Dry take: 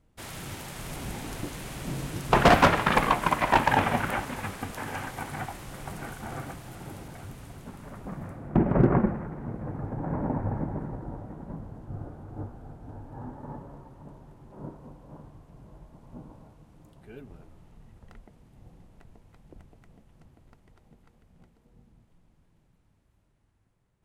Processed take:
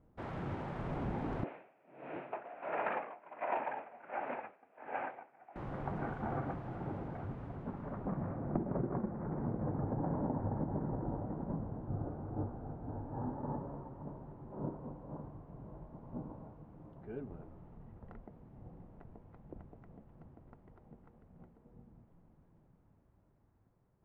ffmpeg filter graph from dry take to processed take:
ffmpeg -i in.wav -filter_complex "[0:a]asettb=1/sr,asplit=3[link_01][link_02][link_03];[link_01]atrim=end=1.444[link_04];[link_02]atrim=start=1.44:end=5.56,asetpts=PTS-STARTPTS,afade=type=in:duration=0.004:curve=qsin,afade=type=out:start_time=4.116:duration=0.004:curve=qsin,volume=21.5dB,asoftclip=hard,volume=-21.5dB,highpass=480,equalizer=frequency=650:width_type=q:width=4:gain=5,equalizer=frequency=1100:width_type=q:width=4:gain=-6,equalizer=frequency=2500:width_type=q:width=4:gain=9,lowpass=frequency=2700:width=0.5412,lowpass=frequency=2700:width=1.3066,aeval=exprs='val(0)*pow(10,-26*(0.5-0.5*cos(2*PI*1.4*n/s))/20)':channel_layout=same[link_05];[link_03]atrim=start=5.556[link_06];[link_04][link_05]acrossfade=duration=0.004:curve1=hsin:curve2=qsin[link_07];[link_07][link_06]acrossfade=duration=0.004:curve1=qsin:curve2=hsin,lowpass=1100,lowshelf=frequency=81:gain=-8,acompressor=threshold=-34dB:ratio=20,volume=2.5dB" out.wav

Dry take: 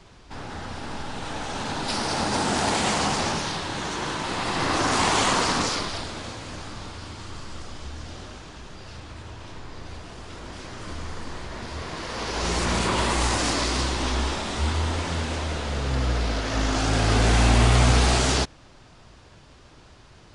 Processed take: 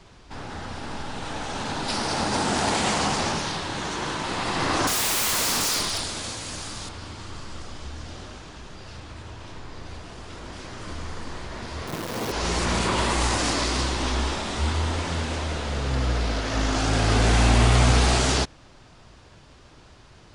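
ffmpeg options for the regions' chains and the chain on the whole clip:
ffmpeg -i in.wav -filter_complex "[0:a]asettb=1/sr,asplit=3[link_01][link_02][link_03];[link_01]atrim=end=4.874[link_04];[link_02]atrim=start=4.87:end=6.89,asetpts=PTS-STARTPTS,afade=type=in:duration=0.004:curve=qsin,afade=type=out:start_time=2.016:duration=0.004:curve=qsin,aemphasis=mode=production:type=75fm,aeval=exprs='0.112*(abs(mod(val(0)/0.112+3,4)-2)-1)':channel_layout=same[link_05];[link_03]atrim=start=6.886[link_06];[link_04][link_05]acrossfade=duration=0.004:curve1=hsin:curve2=qsin[link_07];[link_07][link_06]acrossfade=duration=0.004:curve1=qsin:curve2=hsin,asettb=1/sr,asplit=3[link_08][link_09][link_10];[link_08]atrim=end=11.874[link_11];[link_09]atrim=start=11.87:end=12.32,asetpts=PTS-STARTPTS,afade=type=in:duration=0.004:curve=qsin,afade=type=out:start_time=0.446:duration=0.004:curve=qsin,highpass=frequency=99:width=0.5412,highpass=frequency=99:width=1.3066,tiltshelf=frequency=890:gain=6.5,acrusher=bits=6:dc=4:mix=0:aa=0.000001[link_12];[link_10]atrim=start=12.316[link_13];[link_11][link_12]acrossfade=duration=0.004:curve1=hsin:curve2=qsin[link_14];[link_14][link_13]acrossfade=duration=0.004:curve1=qsin:curve2=hsin" out.wav

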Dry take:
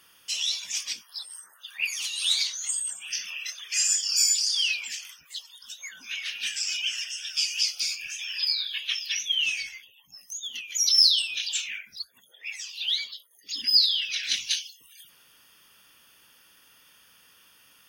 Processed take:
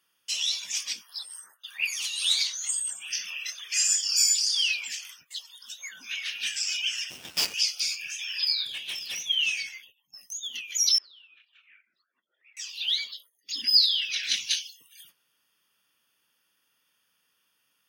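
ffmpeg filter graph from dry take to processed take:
ffmpeg -i in.wav -filter_complex "[0:a]asettb=1/sr,asplit=3[link_01][link_02][link_03];[link_01]atrim=end=7.104[link_04];[link_02]atrim=start=7.1:end=7.54,asetpts=PTS-STARTPTS,afade=type=in:duration=0.004:curve=qsin,afade=type=out:start_time=0.436:duration=0.004:curve=qsin,adynamicsmooth=sensitivity=6:basefreq=1900,acrusher=bits=5:dc=4:mix=0:aa=0.000001[link_05];[link_03]atrim=start=7.536[link_06];[link_04][link_05]acrossfade=duration=0.004:curve1=hsin:curve2=qsin[link_07];[link_07][link_06]acrossfade=duration=0.004:curve1=qsin:curve2=hsin,asettb=1/sr,asplit=3[link_08][link_09][link_10];[link_08]atrim=end=8.654[link_11];[link_09]atrim=start=8.65:end=9.29,asetpts=PTS-STARTPTS,afade=type=in:duration=0.004:curve=qsin,afade=type=out:start_time=0.636:duration=0.004:curve=qsin,highpass=1400,aeval=exprs='(tanh(31.6*val(0)+0.2)-tanh(0.2))/31.6':channel_layout=same[link_12];[link_10]atrim=start=9.286[link_13];[link_11][link_12]acrossfade=duration=0.004:curve1=hsin:curve2=qsin[link_14];[link_14][link_13]acrossfade=duration=0.004:curve1=qsin:curve2=hsin,asettb=1/sr,asplit=3[link_15][link_16][link_17];[link_15]atrim=end=10.984[link_18];[link_16]atrim=start=10.98:end=12.57,asetpts=PTS-STARTPTS,afade=type=in:duration=0.004:curve=qsin,afade=type=out:start_time=1.586:duration=0.004:curve=qsin,highpass=310,equalizer=frequency=330:width_type=q:width=4:gain=8,equalizer=frequency=480:width_type=q:width=4:gain=-5,equalizer=frequency=820:width_type=q:width=4:gain=-7,equalizer=frequency=1300:width_type=q:width=4:gain=9,lowpass=frequency=2300:width=0.5412,lowpass=frequency=2300:width=1.3066,acompressor=threshold=-54dB:ratio=4:attack=3.2:release=140:knee=1:detection=peak[link_19];[link_17]atrim=start=12.566[link_20];[link_18][link_19]acrossfade=duration=0.004:curve1=hsin:curve2=qsin[link_21];[link_21][link_20]acrossfade=duration=0.004:curve1=qsin:curve2=hsin,agate=range=-15dB:threshold=-53dB:ratio=16:detection=peak,highpass=110" out.wav

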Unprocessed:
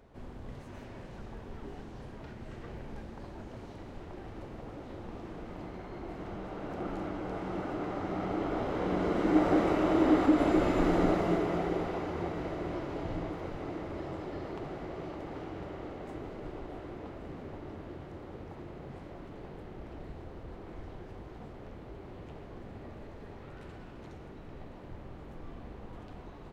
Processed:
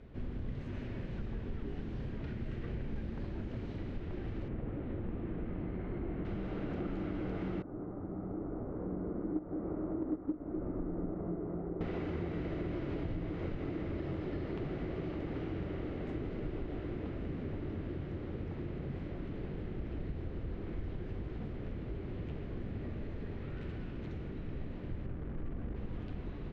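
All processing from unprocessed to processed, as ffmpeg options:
ffmpeg -i in.wav -filter_complex "[0:a]asettb=1/sr,asplit=3[link_01][link_02][link_03];[link_01]atrim=end=4.484[link_04];[link_02]atrim=start=4.48:end=6.25,asetpts=PTS-STARTPTS,afade=type=in:duration=0.004:curve=qsin,afade=type=out:start_time=1.766:duration=0.004:curve=qsin,lowpass=3200,aemphasis=mode=reproduction:type=75fm[link_05];[link_03]atrim=start=6.246[link_06];[link_04][link_05]acrossfade=duration=0.004:curve1=hsin:curve2=qsin[link_07];[link_07][link_06]acrossfade=duration=0.004:curve1=qsin:curve2=hsin,asettb=1/sr,asplit=3[link_08][link_09][link_10];[link_08]atrim=end=7.624[link_11];[link_09]atrim=start=7.62:end=11.81,asetpts=PTS-STARTPTS,afade=type=in:duration=0.004:curve=qsin,afade=type=out:start_time=4.186:duration=0.004:curve=qsin,lowpass=frequency=1200:width=0.5412,lowpass=frequency=1200:width=1.3066,agate=range=-10dB:threshold=-22dB:ratio=16:release=100:detection=peak[link_12];[link_10]atrim=start=11.806[link_13];[link_11][link_12]acrossfade=duration=0.004:curve1=hsin:curve2=qsin[link_14];[link_14][link_13]acrossfade=duration=0.004:curve1=qsin:curve2=hsin,asettb=1/sr,asplit=3[link_15][link_16][link_17];[link_15]atrim=end=25.064[link_18];[link_16]atrim=start=25.06:end=25.76,asetpts=PTS-STARTPTS,afade=type=in:duration=0.004:curve=qsin,afade=type=out:start_time=0.696:duration=0.004:curve=qsin,acrusher=bits=9:dc=4:mix=0:aa=0.000001,lowpass=1400[link_19];[link_17]atrim=start=25.756[link_20];[link_18][link_19]acrossfade=duration=0.004:curve1=hsin:curve2=qsin[link_21];[link_21][link_20]acrossfade=duration=0.004:curve1=qsin:curve2=hsin,lowpass=2700,equalizer=frequency=870:width=0.76:gain=-14,acompressor=threshold=-42dB:ratio=6,volume=8.5dB" out.wav

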